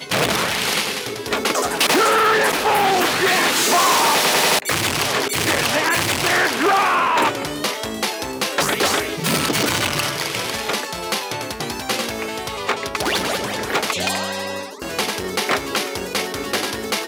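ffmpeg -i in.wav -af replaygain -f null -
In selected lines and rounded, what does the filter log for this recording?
track_gain = -0.4 dB
track_peak = 0.376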